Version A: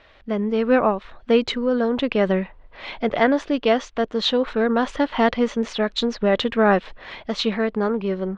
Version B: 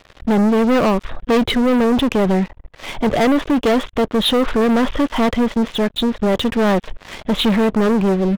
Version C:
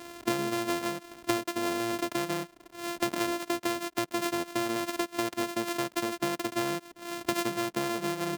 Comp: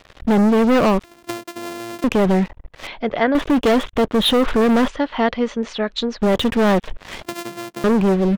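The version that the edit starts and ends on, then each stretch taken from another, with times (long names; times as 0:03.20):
B
0:01.04–0:02.04: punch in from C
0:02.87–0:03.35: punch in from A
0:04.88–0:06.21: punch in from A
0:07.23–0:07.84: punch in from C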